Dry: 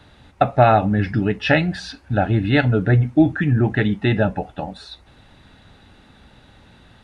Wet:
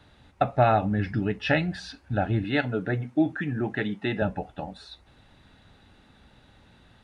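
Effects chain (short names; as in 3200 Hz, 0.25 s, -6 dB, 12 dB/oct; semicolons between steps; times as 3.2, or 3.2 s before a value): 2.44–4.22 Bessel high-pass 210 Hz, order 2; gain -7 dB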